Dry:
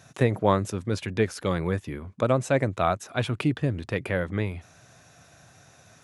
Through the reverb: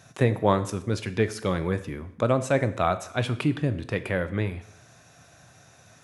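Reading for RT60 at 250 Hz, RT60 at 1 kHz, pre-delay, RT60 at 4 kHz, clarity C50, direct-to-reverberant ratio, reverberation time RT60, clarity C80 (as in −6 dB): 0.65 s, 0.70 s, 8 ms, 0.65 s, 14.5 dB, 11.0 dB, 0.70 s, 17.0 dB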